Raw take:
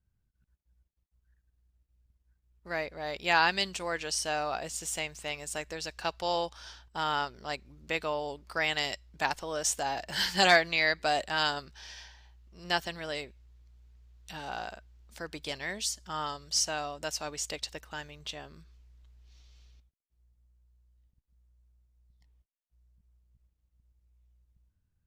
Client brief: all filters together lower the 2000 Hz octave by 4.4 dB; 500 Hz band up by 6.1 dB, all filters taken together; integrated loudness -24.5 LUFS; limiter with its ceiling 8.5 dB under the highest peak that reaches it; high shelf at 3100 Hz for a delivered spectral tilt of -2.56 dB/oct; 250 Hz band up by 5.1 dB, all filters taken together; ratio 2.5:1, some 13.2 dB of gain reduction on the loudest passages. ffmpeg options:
-af "equalizer=f=250:t=o:g=4.5,equalizer=f=500:t=o:g=7.5,equalizer=f=2k:t=o:g=-7.5,highshelf=f=3.1k:g=3.5,acompressor=threshold=-36dB:ratio=2.5,volume=14.5dB,alimiter=limit=-11.5dB:level=0:latency=1"

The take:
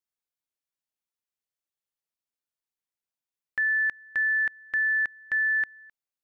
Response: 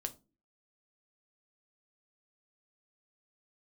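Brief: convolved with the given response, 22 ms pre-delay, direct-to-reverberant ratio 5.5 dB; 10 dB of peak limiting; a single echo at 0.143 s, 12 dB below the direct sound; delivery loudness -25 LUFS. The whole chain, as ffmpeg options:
-filter_complex "[0:a]alimiter=level_in=7dB:limit=-24dB:level=0:latency=1,volume=-7dB,aecho=1:1:143:0.251,asplit=2[a][b];[1:a]atrim=start_sample=2205,adelay=22[c];[b][c]afir=irnorm=-1:irlink=0,volume=-4.5dB[d];[a][d]amix=inputs=2:normalize=0,volume=12.5dB"

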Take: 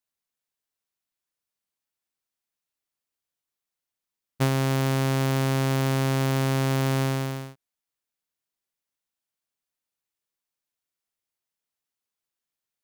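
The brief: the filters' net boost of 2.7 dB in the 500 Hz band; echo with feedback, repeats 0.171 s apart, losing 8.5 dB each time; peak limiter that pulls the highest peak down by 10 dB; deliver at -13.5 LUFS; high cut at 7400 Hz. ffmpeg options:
-af "lowpass=7.4k,equalizer=f=500:t=o:g=3.5,alimiter=limit=-23dB:level=0:latency=1,aecho=1:1:171|342|513|684:0.376|0.143|0.0543|0.0206,volume=15dB"

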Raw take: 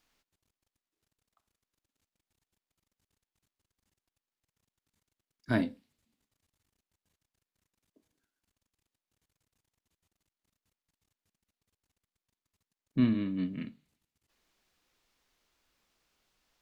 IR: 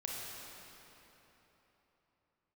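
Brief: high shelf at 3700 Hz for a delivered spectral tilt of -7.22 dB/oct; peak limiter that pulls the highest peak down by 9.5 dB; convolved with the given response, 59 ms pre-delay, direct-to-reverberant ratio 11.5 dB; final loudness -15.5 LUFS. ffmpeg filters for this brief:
-filter_complex "[0:a]highshelf=f=3.7k:g=-3,alimiter=level_in=0.5dB:limit=-24dB:level=0:latency=1,volume=-0.5dB,asplit=2[a][b];[1:a]atrim=start_sample=2205,adelay=59[c];[b][c]afir=irnorm=-1:irlink=0,volume=-13dB[d];[a][d]amix=inputs=2:normalize=0,volume=22dB"

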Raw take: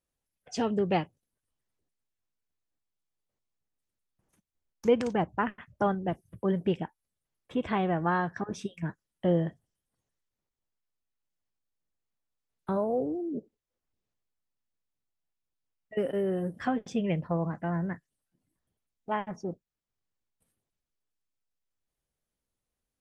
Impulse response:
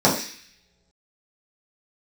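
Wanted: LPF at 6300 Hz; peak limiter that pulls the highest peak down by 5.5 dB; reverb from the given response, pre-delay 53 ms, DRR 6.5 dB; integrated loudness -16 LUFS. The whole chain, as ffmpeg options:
-filter_complex "[0:a]lowpass=6.3k,alimiter=limit=-18.5dB:level=0:latency=1,asplit=2[a][b];[1:a]atrim=start_sample=2205,adelay=53[c];[b][c]afir=irnorm=-1:irlink=0,volume=-27dB[d];[a][d]amix=inputs=2:normalize=0,volume=13.5dB"

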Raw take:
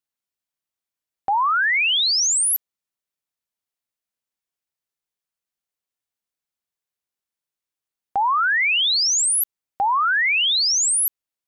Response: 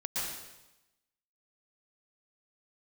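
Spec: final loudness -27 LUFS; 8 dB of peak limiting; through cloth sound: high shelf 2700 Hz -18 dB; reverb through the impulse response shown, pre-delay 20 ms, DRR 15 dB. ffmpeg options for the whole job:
-filter_complex "[0:a]alimiter=limit=-24dB:level=0:latency=1,asplit=2[a][b];[1:a]atrim=start_sample=2205,adelay=20[c];[b][c]afir=irnorm=-1:irlink=0,volume=-20dB[d];[a][d]amix=inputs=2:normalize=0,highshelf=f=2.7k:g=-18,volume=6.5dB"

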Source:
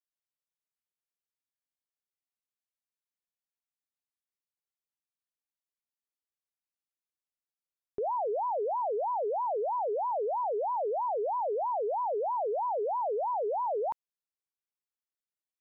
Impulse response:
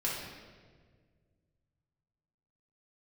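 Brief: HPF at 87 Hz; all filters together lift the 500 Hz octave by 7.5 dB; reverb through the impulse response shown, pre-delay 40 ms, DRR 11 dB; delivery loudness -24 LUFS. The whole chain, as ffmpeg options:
-filter_complex "[0:a]highpass=87,equalizer=f=500:t=o:g=9,asplit=2[a][b];[1:a]atrim=start_sample=2205,adelay=40[c];[b][c]afir=irnorm=-1:irlink=0,volume=-16.5dB[d];[a][d]amix=inputs=2:normalize=0,volume=1.5dB"

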